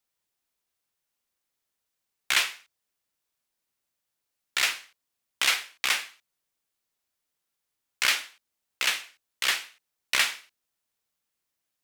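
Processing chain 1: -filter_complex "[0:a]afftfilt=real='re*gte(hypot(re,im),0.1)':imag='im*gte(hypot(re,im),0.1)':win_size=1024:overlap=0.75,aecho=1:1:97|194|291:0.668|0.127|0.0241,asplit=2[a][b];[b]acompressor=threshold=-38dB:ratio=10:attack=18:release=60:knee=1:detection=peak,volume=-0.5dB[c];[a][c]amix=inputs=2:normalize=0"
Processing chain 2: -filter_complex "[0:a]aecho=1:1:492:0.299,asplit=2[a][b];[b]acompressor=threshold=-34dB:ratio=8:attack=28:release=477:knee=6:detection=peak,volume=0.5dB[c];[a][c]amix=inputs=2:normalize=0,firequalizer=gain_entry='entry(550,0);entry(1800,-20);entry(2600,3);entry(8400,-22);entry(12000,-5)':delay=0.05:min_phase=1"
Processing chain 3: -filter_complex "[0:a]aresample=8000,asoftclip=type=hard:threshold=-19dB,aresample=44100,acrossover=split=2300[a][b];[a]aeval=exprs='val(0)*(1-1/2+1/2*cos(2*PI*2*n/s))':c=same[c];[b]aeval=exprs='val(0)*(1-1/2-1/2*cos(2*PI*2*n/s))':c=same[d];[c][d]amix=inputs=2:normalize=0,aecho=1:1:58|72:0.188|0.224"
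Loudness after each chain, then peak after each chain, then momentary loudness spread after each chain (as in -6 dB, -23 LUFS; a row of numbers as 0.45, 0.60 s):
-26.0, -27.5, -34.5 LUFS; -8.5, -7.5, -19.5 dBFS; 12, 10, 15 LU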